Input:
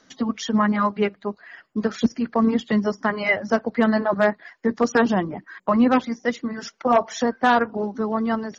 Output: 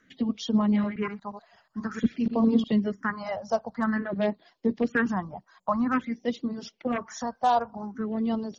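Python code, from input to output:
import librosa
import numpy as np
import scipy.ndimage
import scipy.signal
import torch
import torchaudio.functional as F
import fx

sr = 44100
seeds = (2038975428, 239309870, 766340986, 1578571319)

y = fx.reverse_delay(x, sr, ms=120, wet_db=-7, at=(0.6, 2.68))
y = fx.phaser_stages(y, sr, stages=4, low_hz=300.0, high_hz=1800.0, hz=0.5, feedback_pct=30)
y = y * 10.0 ** (-3.5 / 20.0)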